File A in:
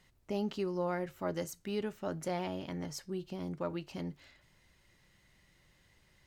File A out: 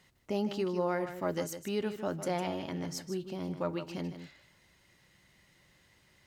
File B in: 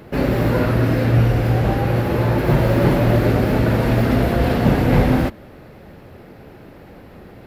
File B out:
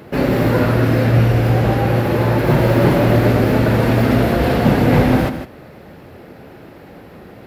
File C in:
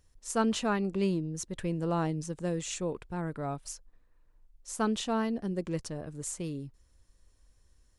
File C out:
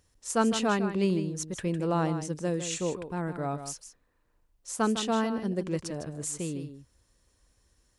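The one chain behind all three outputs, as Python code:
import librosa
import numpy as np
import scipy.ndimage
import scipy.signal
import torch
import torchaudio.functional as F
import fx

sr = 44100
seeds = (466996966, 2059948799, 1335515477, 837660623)

p1 = fx.highpass(x, sr, hz=100.0, slope=6)
p2 = p1 + fx.echo_single(p1, sr, ms=155, db=-10.0, dry=0)
y = p2 * 10.0 ** (3.0 / 20.0)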